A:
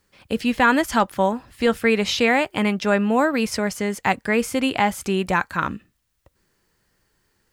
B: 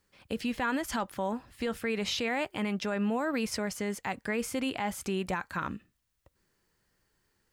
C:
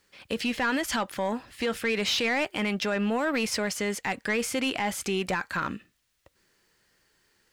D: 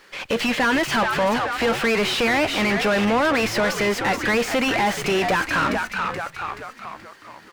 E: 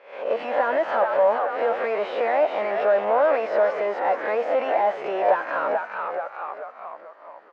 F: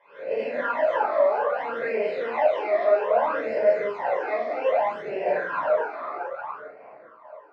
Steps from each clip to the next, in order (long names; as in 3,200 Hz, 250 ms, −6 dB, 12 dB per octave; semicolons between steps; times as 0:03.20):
brickwall limiter −15 dBFS, peak gain reduction 8 dB; level −7 dB
parametric band 1,000 Hz −5.5 dB 1.5 octaves; mid-hump overdrive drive 13 dB, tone 5,100 Hz, clips at −21.5 dBFS; level +4 dB
echo with shifted repeats 428 ms, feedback 44%, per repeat −100 Hz, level −11 dB; mid-hump overdrive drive 25 dB, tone 2,000 Hz, clips at −16.5 dBFS; windowed peak hold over 3 samples; level +4 dB
peak hold with a rise ahead of every peak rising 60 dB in 0.51 s; four-pole ladder band-pass 680 Hz, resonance 55%; level +8 dB
rectangular room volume 860 cubic metres, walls furnished, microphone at 5 metres; all-pass phaser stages 12, 0.62 Hz, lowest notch 150–1,200 Hz; one half of a high-frequency compander decoder only; level −5.5 dB